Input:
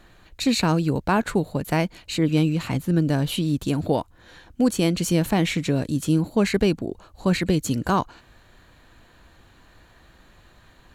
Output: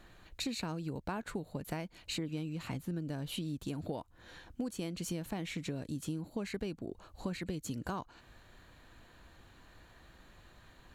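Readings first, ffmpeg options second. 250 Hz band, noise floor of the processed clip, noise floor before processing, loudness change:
−17.0 dB, −61 dBFS, −54 dBFS, −17.0 dB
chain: -af "acompressor=threshold=-30dB:ratio=6,volume=-5.5dB"

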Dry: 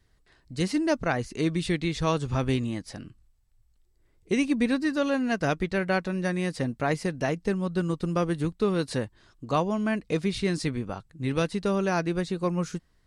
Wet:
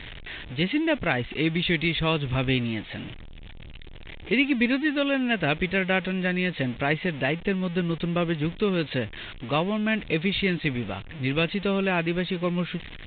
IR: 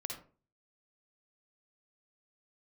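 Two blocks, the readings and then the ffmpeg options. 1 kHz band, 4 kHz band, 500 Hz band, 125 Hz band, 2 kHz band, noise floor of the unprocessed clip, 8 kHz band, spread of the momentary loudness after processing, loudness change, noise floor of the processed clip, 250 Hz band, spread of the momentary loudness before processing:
−0.5 dB, +7.5 dB, +0.5 dB, +1.5 dB, +6.5 dB, −65 dBFS, below −35 dB, 11 LU, +2.0 dB, −41 dBFS, +1.0 dB, 7 LU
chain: -af "aeval=exprs='val(0)+0.5*0.0168*sgn(val(0))':channel_layout=same,highshelf=frequency=1700:width_type=q:width=1.5:gain=7.5" -ar 8000 -c:a pcm_mulaw

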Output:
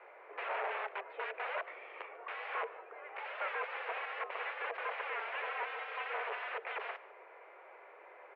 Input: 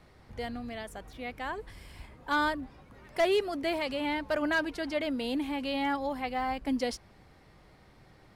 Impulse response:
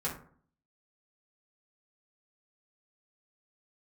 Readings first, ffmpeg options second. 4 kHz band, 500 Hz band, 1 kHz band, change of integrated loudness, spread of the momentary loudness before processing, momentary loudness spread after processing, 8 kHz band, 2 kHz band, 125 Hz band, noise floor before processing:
−12.0 dB, −11.0 dB, −5.0 dB, −8.0 dB, 15 LU, 17 LU, below −30 dB, −4.0 dB, below −40 dB, −58 dBFS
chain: -filter_complex "[0:a]crystalizer=i=0.5:c=0,aeval=exprs='(mod(66.8*val(0)+1,2)-1)/66.8':channel_layout=same,asplit=2[link_01][link_02];[link_02]aecho=0:1:146:0.106[link_03];[link_01][link_03]amix=inputs=2:normalize=0,highpass=frequency=240:width_type=q:width=0.5412,highpass=frequency=240:width_type=q:width=1.307,lowpass=frequency=2300:width_type=q:width=0.5176,lowpass=frequency=2300:width_type=q:width=0.7071,lowpass=frequency=2300:width_type=q:width=1.932,afreqshift=200,volume=6dB"

